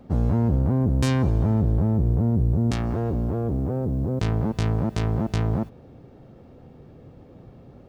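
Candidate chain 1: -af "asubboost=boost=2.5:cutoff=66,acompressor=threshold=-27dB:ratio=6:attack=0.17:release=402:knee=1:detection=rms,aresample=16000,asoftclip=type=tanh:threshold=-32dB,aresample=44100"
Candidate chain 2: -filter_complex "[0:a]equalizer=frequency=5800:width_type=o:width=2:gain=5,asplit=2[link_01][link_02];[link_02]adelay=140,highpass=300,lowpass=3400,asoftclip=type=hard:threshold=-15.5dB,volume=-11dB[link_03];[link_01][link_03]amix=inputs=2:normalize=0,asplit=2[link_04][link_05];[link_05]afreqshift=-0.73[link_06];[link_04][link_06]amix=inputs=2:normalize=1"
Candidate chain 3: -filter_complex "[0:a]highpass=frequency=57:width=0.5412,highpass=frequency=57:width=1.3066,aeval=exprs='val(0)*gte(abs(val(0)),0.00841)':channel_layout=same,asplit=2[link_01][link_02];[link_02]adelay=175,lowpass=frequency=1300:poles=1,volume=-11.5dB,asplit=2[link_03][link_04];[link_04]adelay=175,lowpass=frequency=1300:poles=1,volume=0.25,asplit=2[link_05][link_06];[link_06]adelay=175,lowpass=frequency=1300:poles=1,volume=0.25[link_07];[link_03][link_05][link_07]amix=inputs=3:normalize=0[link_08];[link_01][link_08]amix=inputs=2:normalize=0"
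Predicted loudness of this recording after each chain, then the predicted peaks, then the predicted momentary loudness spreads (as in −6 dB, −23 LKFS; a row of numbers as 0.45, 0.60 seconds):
−40.0, −26.5, −23.5 LKFS; −30.5, −11.5, −7.0 dBFS; 11, 6, 5 LU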